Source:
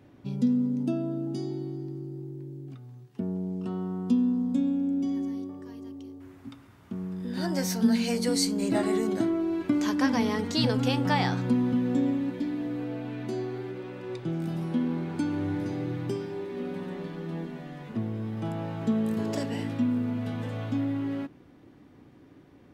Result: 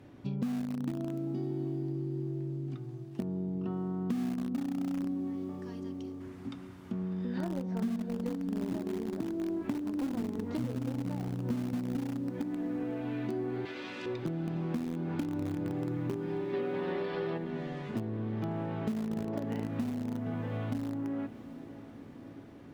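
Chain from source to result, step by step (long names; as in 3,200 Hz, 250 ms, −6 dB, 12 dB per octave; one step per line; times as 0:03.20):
treble cut that deepens with the level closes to 380 Hz, closed at −23 dBFS
in parallel at −12 dB: bit reduction 4 bits
0:13.65–0:14.06: on the sum: meter weighting curve ITU-R 468
0:16.54–0:17.38: gain on a spectral selection 340–5,600 Hz +10 dB
downward compressor 6 to 1, threshold −33 dBFS, peak gain reduction 15.5 dB
on a send: feedback delay with all-pass diffusion 674 ms, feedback 67%, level −14.5 dB
on the sum: level +1.5 dB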